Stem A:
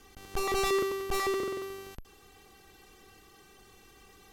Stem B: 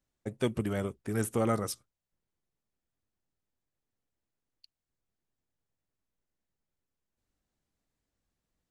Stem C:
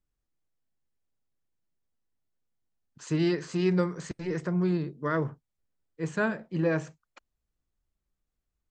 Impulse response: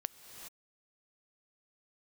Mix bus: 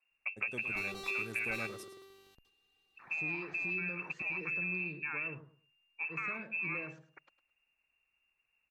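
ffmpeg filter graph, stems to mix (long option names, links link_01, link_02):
-filter_complex "[0:a]agate=range=-8dB:threshold=-49dB:ratio=16:detection=peak,equalizer=frequency=3900:width_type=o:width=0.48:gain=10,adelay=400,volume=-18dB[link_01];[1:a]volume=2.5dB,asplit=2[link_02][link_03];[link_03]volume=-18dB[link_04];[2:a]lowpass=4500,alimiter=level_in=0.5dB:limit=-24dB:level=0:latency=1,volume=-0.5dB,volume=-2dB,asplit=2[link_05][link_06];[link_06]volume=-11.5dB[link_07];[link_02][link_05]amix=inputs=2:normalize=0,lowpass=frequency=2400:width_type=q:width=0.5098,lowpass=frequency=2400:width_type=q:width=0.6013,lowpass=frequency=2400:width_type=q:width=0.9,lowpass=frequency=2400:width_type=q:width=2.563,afreqshift=-2800,acompressor=threshold=-34dB:ratio=6,volume=0dB[link_08];[link_04][link_07]amix=inputs=2:normalize=0,aecho=0:1:106|212|318|424:1|0.23|0.0529|0.0122[link_09];[link_01][link_08][link_09]amix=inputs=3:normalize=0,lowshelf=frequency=60:gain=-7"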